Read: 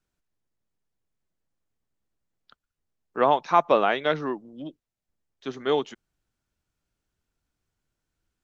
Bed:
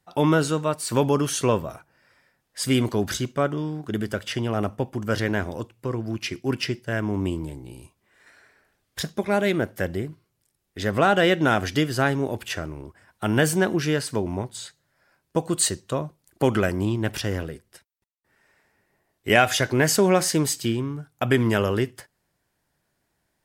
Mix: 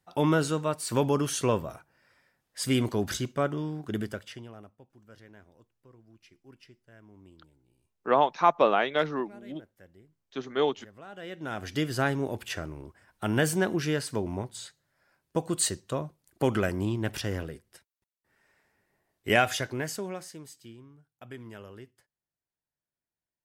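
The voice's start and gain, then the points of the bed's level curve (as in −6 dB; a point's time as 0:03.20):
4.90 s, −2.0 dB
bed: 0:04.01 −4.5 dB
0:04.76 −28.5 dB
0:11.03 −28.5 dB
0:11.86 −5 dB
0:19.39 −5 dB
0:20.40 −23.5 dB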